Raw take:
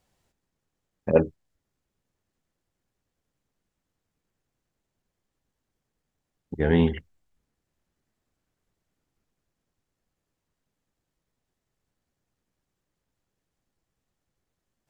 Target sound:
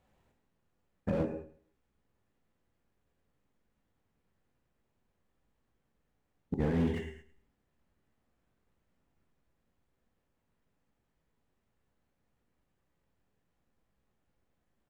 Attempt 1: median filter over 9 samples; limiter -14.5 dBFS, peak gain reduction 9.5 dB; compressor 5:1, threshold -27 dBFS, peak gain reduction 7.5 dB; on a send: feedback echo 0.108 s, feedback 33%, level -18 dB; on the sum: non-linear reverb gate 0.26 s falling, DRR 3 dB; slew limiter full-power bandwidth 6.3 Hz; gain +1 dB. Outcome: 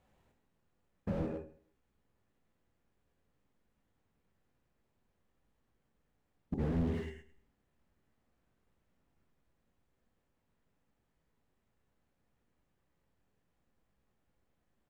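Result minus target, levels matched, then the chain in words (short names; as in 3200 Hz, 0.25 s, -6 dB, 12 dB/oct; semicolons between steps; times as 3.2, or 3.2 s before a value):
slew limiter: distortion +9 dB
median filter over 9 samples; limiter -14.5 dBFS, peak gain reduction 9.5 dB; compressor 5:1, threshold -27 dBFS, peak gain reduction 7.5 dB; on a send: feedback echo 0.108 s, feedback 33%, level -18 dB; on the sum: non-linear reverb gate 0.26 s falling, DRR 3 dB; slew limiter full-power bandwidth 15 Hz; gain +1 dB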